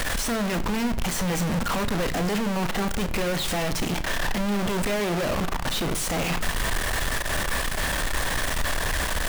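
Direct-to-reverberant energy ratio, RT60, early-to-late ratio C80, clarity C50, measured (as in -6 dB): 10.5 dB, 0.75 s, 18.0 dB, 15.5 dB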